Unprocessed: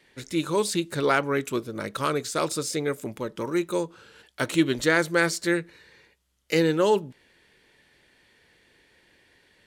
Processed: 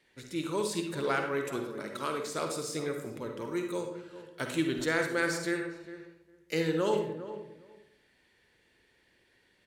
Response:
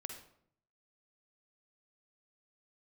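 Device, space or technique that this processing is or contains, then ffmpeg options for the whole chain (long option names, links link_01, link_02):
bathroom: -filter_complex "[0:a]asettb=1/sr,asplit=3[link_01][link_02][link_03];[link_01]atrim=end=1.634[link_04];[link_02]atrim=start=1.63:end=2.34,asetpts=PTS-STARTPTS,afade=type=in:duration=0.004:curve=qsin,afade=type=out:start_time=0.706:duration=0.004:curve=qsin,highpass=190[link_05];[link_03]atrim=start=2.336[link_06];[link_04][link_05]acrossfade=duration=0.004:curve1=hsin:curve2=qsin[link_07];[link_07][link_06]acrossfade=duration=0.004:curve1=qsin:curve2=hsin[link_08];[1:a]atrim=start_sample=2205[link_09];[link_08][link_09]afir=irnorm=-1:irlink=0,asplit=2[link_10][link_11];[link_11]adelay=406,lowpass=frequency=1200:poles=1,volume=-12dB,asplit=2[link_12][link_13];[link_13]adelay=406,lowpass=frequency=1200:poles=1,volume=0.18[link_14];[link_10][link_12][link_14]amix=inputs=3:normalize=0,volume=-4.5dB"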